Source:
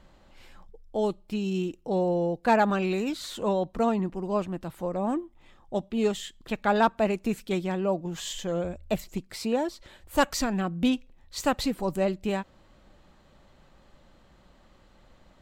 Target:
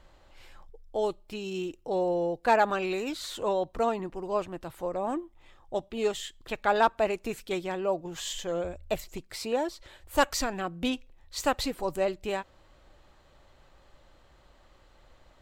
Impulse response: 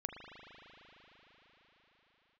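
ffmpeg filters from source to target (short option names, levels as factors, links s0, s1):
-af "equalizer=f=200:t=o:w=0.79:g=-11.5"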